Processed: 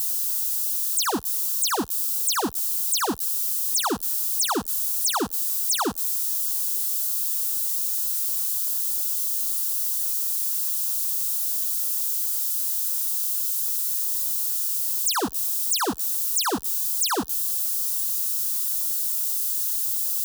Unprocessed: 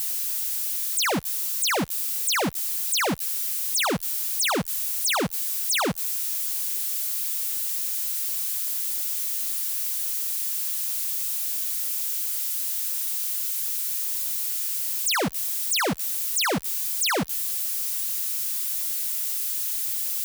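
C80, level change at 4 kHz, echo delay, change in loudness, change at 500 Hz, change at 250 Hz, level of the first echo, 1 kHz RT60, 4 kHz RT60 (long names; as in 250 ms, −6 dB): no reverb audible, −1.0 dB, no echo audible, +2.0 dB, −2.0 dB, 0.0 dB, no echo audible, no reverb audible, no reverb audible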